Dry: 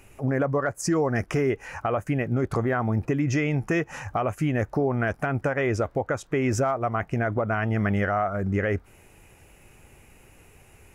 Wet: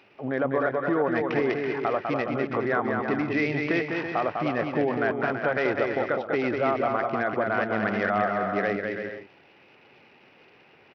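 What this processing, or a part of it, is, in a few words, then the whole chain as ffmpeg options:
Bluetooth headset: -filter_complex "[0:a]highpass=170,asettb=1/sr,asplit=3[a][b][c];[a]atrim=end=2.354[d];[b]atrim=start=2.35:end=3.49,asetpts=PTS-STARTPTS,afade=t=in:d=0.004:c=qsin,afade=t=out:st=1.136:d=0.004:c=qsin,highshelf=f=3.1k:t=q:w=1.5:g=-8.5[e];[c]atrim=start=3.486[f];[d][e]acrossfade=d=0.004:c1=hsin:c2=qsin[g];[g][f]acrossfade=d=0.004:c1=qsin:c2=hsin,highpass=f=240:p=1,aecho=1:1:200|330|414.5|469.4|505.1:0.631|0.398|0.251|0.158|0.1,aresample=8000,aresample=44100" -ar 44100 -c:a sbc -b:a 64k

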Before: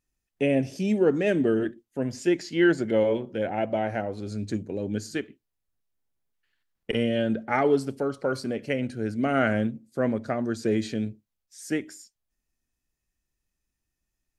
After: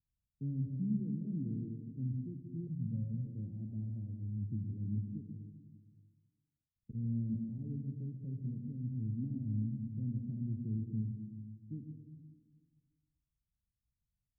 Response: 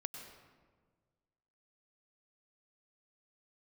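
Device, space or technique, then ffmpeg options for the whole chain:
club heard from the street: -filter_complex "[0:a]highpass=f=110:p=1,alimiter=limit=-16dB:level=0:latency=1:release=257,lowpass=f=140:w=0.5412,lowpass=f=140:w=1.3066[a];[1:a]atrim=start_sample=2205[b];[a][b]afir=irnorm=-1:irlink=0,equalizer=f=270:w=1.9:g=5.5,asettb=1/sr,asplit=3[c][d][e];[c]atrim=end=2.674[f];[d]atrim=start=2.67:end=3.27,asetpts=PTS-STARTPTS,afade=t=in:d=0.004:c=qsin,afade=t=out:st=0.596:d=0.004:c=qsin,aecho=1:1:1.4:0.99,atrim=end_sample=26460[g];[e]atrim=start=3.266[h];[f][g]acrossfade=d=0.004:c1=hsin:c2=qsin[i];[i][h]acrossfade=d=0.004:c1=qsin:c2=hsin,volume=5.5dB"

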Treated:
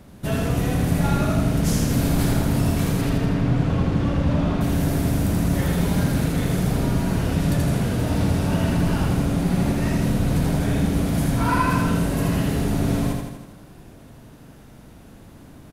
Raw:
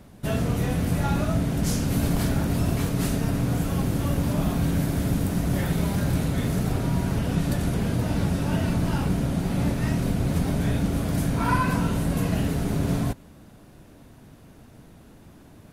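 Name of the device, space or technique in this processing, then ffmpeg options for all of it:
parallel distortion: -filter_complex "[0:a]asplit=2[a][b];[b]asoftclip=type=hard:threshold=-25dB,volume=-13dB[c];[a][c]amix=inputs=2:normalize=0,asettb=1/sr,asplit=3[d][e][f];[d]atrim=end=3.014[g];[e]atrim=start=3.01:end=4.61,asetpts=PTS-STARTPTS,afade=t=in:d=0.004:c=qsin,afade=t=out:st=1.596:d=0.004:c=qsin,lowpass=3.7k[h];[f]atrim=start=4.606[i];[g][h]acrossfade=d=0.004:c1=hsin:c2=qsin[j];[j][i]acrossfade=d=0.004:c1=qsin:c2=hsin,aecho=1:1:81|162|243|324|405|486|567|648:0.708|0.411|0.238|0.138|0.0801|0.0465|0.027|0.0156"

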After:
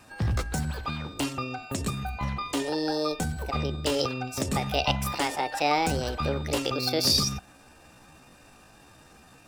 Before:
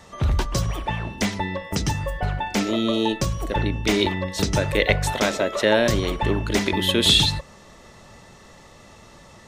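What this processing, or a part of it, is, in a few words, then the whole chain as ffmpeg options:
chipmunk voice: -af "asetrate=60591,aresample=44100,atempo=0.727827,volume=-6dB"

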